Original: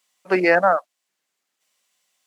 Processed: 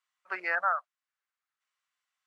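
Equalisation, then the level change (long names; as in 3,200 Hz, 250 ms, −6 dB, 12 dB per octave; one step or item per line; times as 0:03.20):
resonant band-pass 1,300 Hz, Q 2.4
spectral tilt +3 dB per octave
−6.5 dB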